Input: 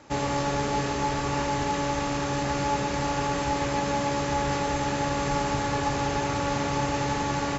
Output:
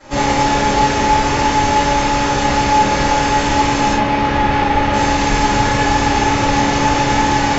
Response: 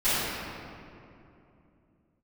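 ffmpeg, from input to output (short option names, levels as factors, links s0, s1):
-filter_complex "[0:a]acontrast=77,asettb=1/sr,asplit=3[s0][s1][s2];[s0]atrim=end=3.924[s3];[s1]atrim=start=3.92:end=4.93,asetpts=PTS-STARTPTS,afade=t=in:d=0.004:c=qsin,afade=t=out:st=1.006:d=0.004:c=qsin,lowpass=3200[s4];[s2]atrim=start=4.926[s5];[s3][s4]acrossfade=d=0.004:c1=hsin:c2=qsin[s6];[s6][s5]acrossfade=d=0.004:c1=qsin:c2=hsin[s7];[1:a]atrim=start_sample=2205,atrim=end_sample=3969[s8];[s7][s8]afir=irnorm=-1:irlink=0,volume=0.596"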